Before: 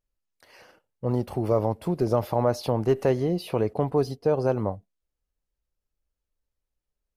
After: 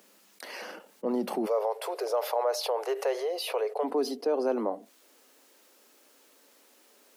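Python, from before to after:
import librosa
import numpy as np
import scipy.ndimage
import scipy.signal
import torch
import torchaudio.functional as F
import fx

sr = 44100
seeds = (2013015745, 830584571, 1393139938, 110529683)

y = fx.steep_highpass(x, sr, hz=fx.steps((0.0, 190.0), (1.45, 420.0), (3.83, 230.0)), slope=72)
y = fx.env_flatten(y, sr, amount_pct=50)
y = F.gain(torch.from_numpy(y), -5.0).numpy()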